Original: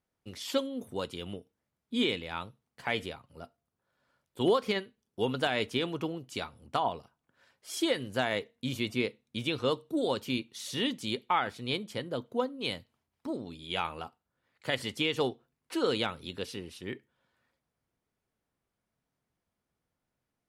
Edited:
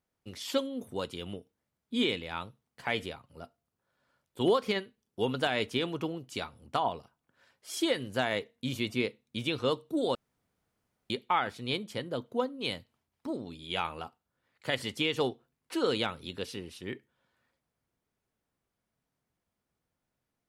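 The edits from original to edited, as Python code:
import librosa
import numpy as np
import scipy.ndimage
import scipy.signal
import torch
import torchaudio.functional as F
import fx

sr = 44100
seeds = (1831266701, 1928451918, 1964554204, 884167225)

y = fx.edit(x, sr, fx.room_tone_fill(start_s=10.15, length_s=0.95), tone=tone)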